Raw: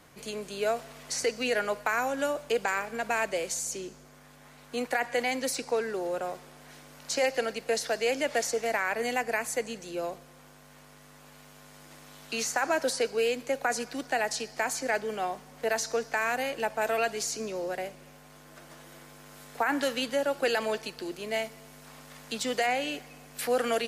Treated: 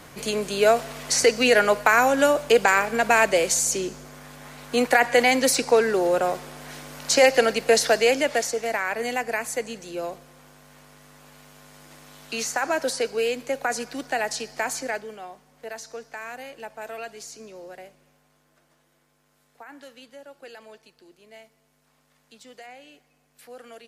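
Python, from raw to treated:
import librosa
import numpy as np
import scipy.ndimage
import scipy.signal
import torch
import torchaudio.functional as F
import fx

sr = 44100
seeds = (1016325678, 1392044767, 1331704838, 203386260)

y = fx.gain(x, sr, db=fx.line((7.9, 10.5), (8.53, 2.5), (14.79, 2.5), (15.22, -8.0), (17.8, -8.0), (18.93, -16.5)))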